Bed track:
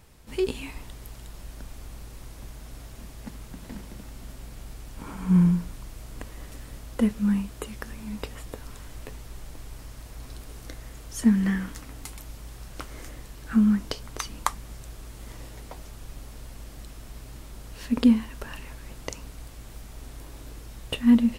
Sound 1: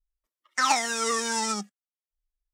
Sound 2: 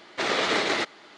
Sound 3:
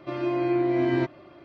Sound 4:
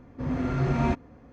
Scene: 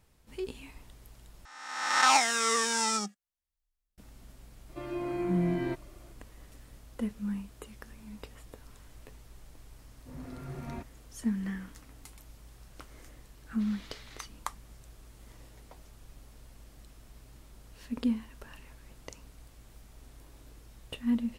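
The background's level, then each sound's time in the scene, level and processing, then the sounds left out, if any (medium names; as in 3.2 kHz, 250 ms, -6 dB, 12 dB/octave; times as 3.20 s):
bed track -11 dB
1.45 s: replace with 1 -3.5 dB + reverse spectral sustain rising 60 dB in 1.07 s
4.69 s: add 3 -9 dB
9.88 s: add 4 -16 dB
13.41 s: add 2 -17.5 dB + amplifier tone stack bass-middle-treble 5-5-5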